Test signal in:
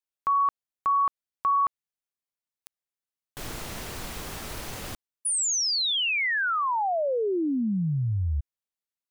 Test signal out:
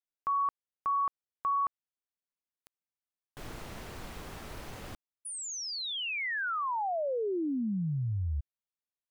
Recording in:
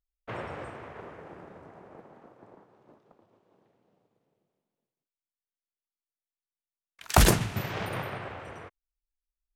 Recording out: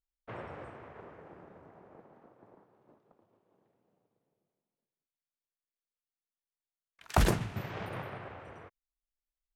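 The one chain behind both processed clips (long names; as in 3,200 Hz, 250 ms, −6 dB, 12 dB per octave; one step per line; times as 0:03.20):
high-shelf EQ 3,500 Hz −9 dB
level −5.5 dB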